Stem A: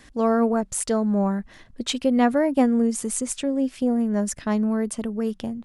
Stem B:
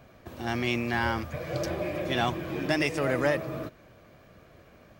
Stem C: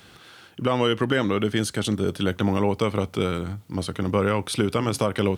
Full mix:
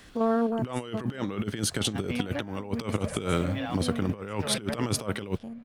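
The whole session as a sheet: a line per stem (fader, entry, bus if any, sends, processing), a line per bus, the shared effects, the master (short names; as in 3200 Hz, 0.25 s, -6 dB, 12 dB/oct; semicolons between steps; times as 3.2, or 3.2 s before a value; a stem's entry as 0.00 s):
-6.0 dB, 0.00 s, no send, stepped spectrum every 50 ms; auto duck -11 dB, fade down 1.10 s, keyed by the third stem
-10.0 dB, 1.45 s, no send, LPF 3400 Hz; limiter -18 dBFS, peak gain reduction 7 dB; elliptic band-stop 170–440 Hz
+1.5 dB, 0.00 s, no send, upward expander 1.5:1, over -44 dBFS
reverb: off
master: negative-ratio compressor -28 dBFS, ratio -0.5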